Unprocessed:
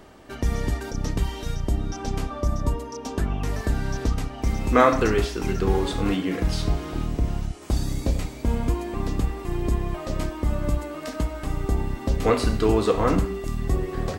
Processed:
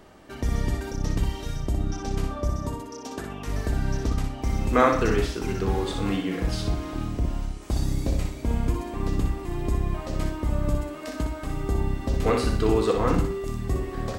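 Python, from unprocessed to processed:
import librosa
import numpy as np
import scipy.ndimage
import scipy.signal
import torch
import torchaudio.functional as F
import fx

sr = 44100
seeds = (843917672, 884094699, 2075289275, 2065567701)

y = fx.highpass(x, sr, hz=fx.line((2.5, 130.0), (3.46, 480.0)), slope=6, at=(2.5, 3.46), fade=0.02)
y = fx.echo_feedback(y, sr, ms=61, feedback_pct=29, wet_db=-6.0)
y = F.gain(torch.from_numpy(y), -3.0).numpy()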